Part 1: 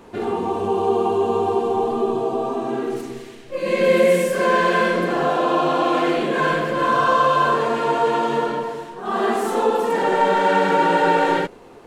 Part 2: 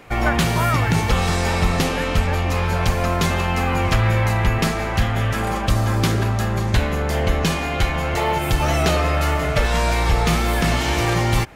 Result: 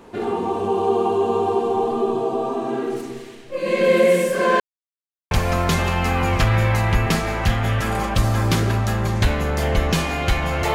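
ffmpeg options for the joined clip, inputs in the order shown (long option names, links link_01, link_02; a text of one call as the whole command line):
ffmpeg -i cue0.wav -i cue1.wav -filter_complex "[0:a]apad=whole_dur=10.74,atrim=end=10.74,asplit=2[link_01][link_02];[link_01]atrim=end=4.6,asetpts=PTS-STARTPTS,afade=type=out:start_time=4.596:duration=0.004:curve=hsin[link_03];[link_02]atrim=start=4.6:end=5.31,asetpts=PTS-STARTPTS,volume=0[link_04];[1:a]atrim=start=2.83:end=8.26,asetpts=PTS-STARTPTS,afade=type=in:duration=0.004:curve=hsin[link_05];[link_03][link_04][link_05]concat=n=3:v=0:a=1" out.wav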